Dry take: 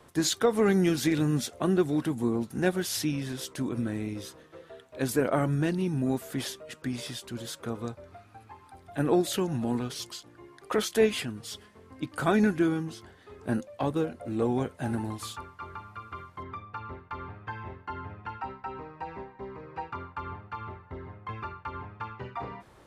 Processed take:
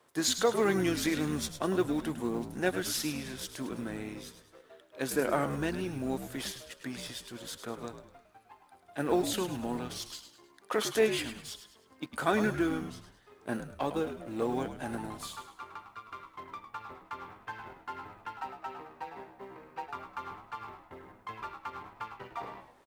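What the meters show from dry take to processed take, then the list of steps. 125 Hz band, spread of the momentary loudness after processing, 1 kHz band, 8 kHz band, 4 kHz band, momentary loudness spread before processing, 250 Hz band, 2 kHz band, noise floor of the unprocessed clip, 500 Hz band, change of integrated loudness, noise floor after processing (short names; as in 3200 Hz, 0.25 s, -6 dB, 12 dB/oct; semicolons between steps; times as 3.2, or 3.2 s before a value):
-9.0 dB, 17 LU, -1.5 dB, -1.0 dB, -1.0 dB, 17 LU, -5.5 dB, -0.5 dB, -56 dBFS, -3.0 dB, -4.0 dB, -62 dBFS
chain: G.711 law mismatch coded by A; HPF 410 Hz 6 dB/oct; on a send: frequency-shifting echo 0.104 s, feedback 40%, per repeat -71 Hz, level -10 dB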